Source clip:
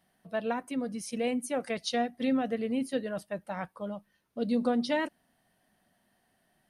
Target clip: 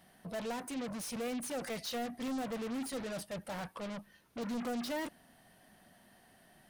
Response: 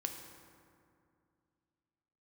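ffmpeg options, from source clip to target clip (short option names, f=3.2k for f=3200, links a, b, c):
-af "asoftclip=type=tanh:threshold=-36.5dB,aeval=exprs='0.015*(cos(1*acos(clip(val(0)/0.015,-1,1)))-cos(1*PI/2))+0.00531*(cos(5*acos(clip(val(0)/0.015,-1,1)))-cos(5*PI/2))':c=same"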